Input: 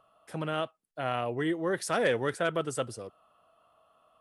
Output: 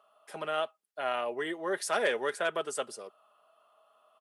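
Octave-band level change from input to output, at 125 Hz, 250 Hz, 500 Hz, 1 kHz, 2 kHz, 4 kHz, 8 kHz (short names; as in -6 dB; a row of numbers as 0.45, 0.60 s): -18.0, -8.5, -1.5, -0.5, 0.0, +0.5, +1.0 dB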